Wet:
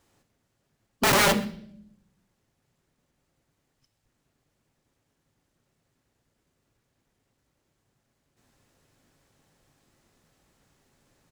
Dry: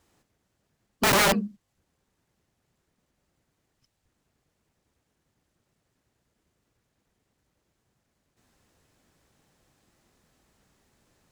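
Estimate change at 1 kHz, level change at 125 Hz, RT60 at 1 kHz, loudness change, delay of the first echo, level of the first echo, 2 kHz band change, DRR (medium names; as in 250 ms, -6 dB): +0.5 dB, +1.0 dB, 0.55 s, -0.5 dB, 129 ms, -23.0 dB, +0.5 dB, 10.0 dB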